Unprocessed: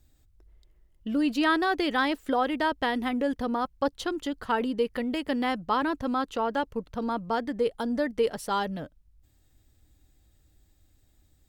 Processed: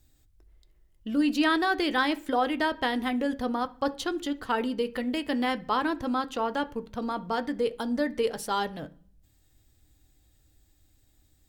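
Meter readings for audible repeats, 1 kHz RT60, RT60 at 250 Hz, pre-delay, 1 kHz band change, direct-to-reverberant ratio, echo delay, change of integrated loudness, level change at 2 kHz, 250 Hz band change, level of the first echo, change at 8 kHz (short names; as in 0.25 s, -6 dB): none, 0.40 s, 0.70 s, 3 ms, -0.5 dB, 10.0 dB, none, 0.0 dB, +0.5 dB, 0.0 dB, none, +2.5 dB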